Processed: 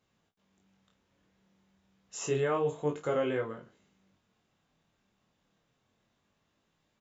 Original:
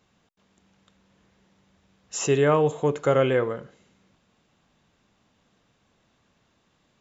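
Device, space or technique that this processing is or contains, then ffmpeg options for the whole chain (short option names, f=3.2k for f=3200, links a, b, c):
double-tracked vocal: -filter_complex "[0:a]asplit=2[a][b];[b]adelay=31,volume=-10dB[c];[a][c]amix=inputs=2:normalize=0,flanger=delay=18.5:depth=7:speed=0.29,volume=-6.5dB"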